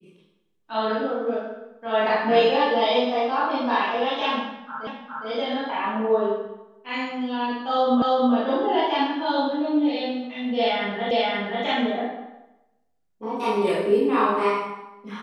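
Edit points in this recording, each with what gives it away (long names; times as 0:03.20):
0:04.87: the same again, the last 0.41 s
0:08.02: the same again, the last 0.32 s
0:11.11: the same again, the last 0.53 s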